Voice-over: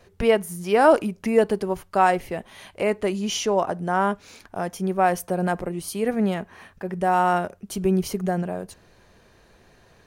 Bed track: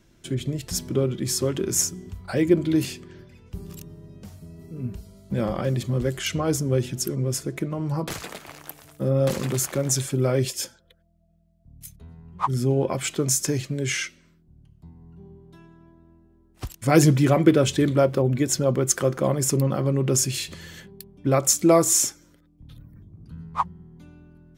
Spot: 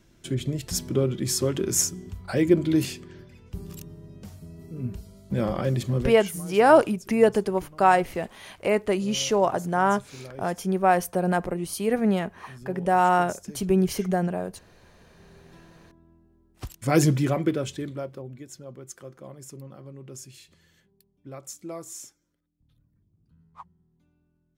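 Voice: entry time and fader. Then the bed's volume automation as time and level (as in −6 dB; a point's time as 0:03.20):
5.85 s, 0.0 dB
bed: 0:05.97 −0.5 dB
0:06.43 −20 dB
0:14.88 −20 dB
0:15.45 −3.5 dB
0:17.13 −3.5 dB
0:18.47 −20.5 dB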